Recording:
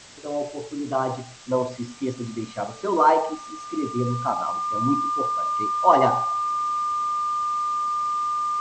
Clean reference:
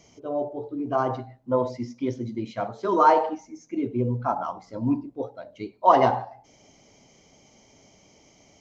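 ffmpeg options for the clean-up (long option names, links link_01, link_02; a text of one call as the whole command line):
ffmpeg -i in.wav -af "bandreject=frequency=1200:width=30,afwtdn=0.0071" out.wav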